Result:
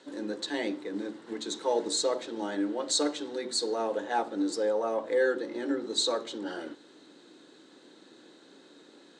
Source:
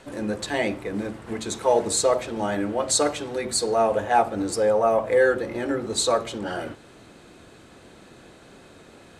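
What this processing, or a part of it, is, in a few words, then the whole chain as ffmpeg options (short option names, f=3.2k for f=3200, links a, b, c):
television speaker: -af "highpass=f=210:w=0.5412,highpass=f=210:w=1.3066,equalizer=f=210:t=q:w=4:g=-4,equalizer=f=300:t=q:w=4:g=6,equalizer=f=680:t=q:w=4:g=-8,equalizer=f=1.2k:t=q:w=4:g=-5,equalizer=f=2.4k:t=q:w=4:g=-8,equalizer=f=3.9k:t=q:w=4:g=7,lowpass=f=8k:w=0.5412,lowpass=f=8k:w=1.3066,volume=-6dB"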